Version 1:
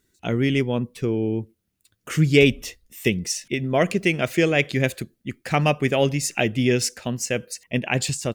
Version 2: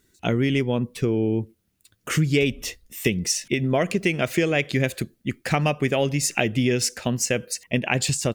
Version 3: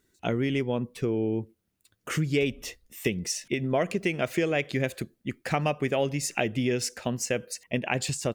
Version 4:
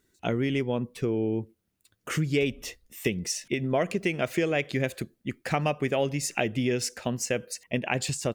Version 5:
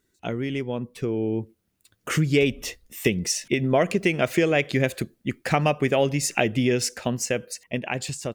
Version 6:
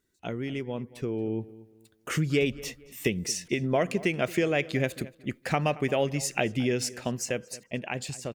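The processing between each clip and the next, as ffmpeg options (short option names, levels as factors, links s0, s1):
-af "acompressor=threshold=0.0708:ratio=4,volume=1.68"
-af "equalizer=f=710:w=0.45:g=4.5,volume=0.422"
-af anull
-af "dynaudnorm=f=400:g=7:m=2.24,volume=0.841"
-filter_complex "[0:a]asplit=2[s0][s1];[s1]adelay=226,lowpass=f=3000:p=1,volume=0.119,asplit=2[s2][s3];[s3]adelay=226,lowpass=f=3000:p=1,volume=0.32,asplit=2[s4][s5];[s5]adelay=226,lowpass=f=3000:p=1,volume=0.32[s6];[s0][s2][s4][s6]amix=inputs=4:normalize=0,volume=0.562"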